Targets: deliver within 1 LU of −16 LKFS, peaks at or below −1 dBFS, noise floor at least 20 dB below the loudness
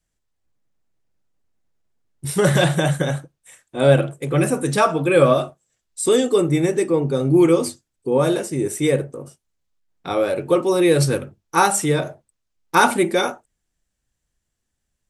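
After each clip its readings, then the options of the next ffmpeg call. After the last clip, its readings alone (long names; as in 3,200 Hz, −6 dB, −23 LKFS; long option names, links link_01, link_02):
integrated loudness −19.0 LKFS; sample peak −1.0 dBFS; target loudness −16.0 LKFS
→ -af "volume=3dB,alimiter=limit=-1dB:level=0:latency=1"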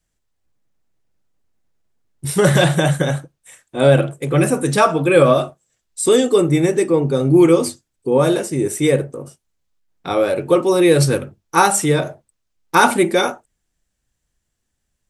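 integrated loudness −16.0 LKFS; sample peak −1.0 dBFS; background noise floor −75 dBFS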